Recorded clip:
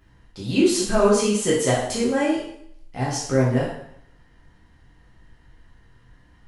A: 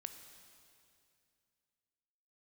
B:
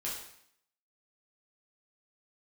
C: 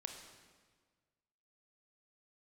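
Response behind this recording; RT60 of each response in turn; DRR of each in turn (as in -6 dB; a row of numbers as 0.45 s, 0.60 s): B; 2.5 s, 0.65 s, 1.6 s; 7.5 dB, -6.5 dB, 4.0 dB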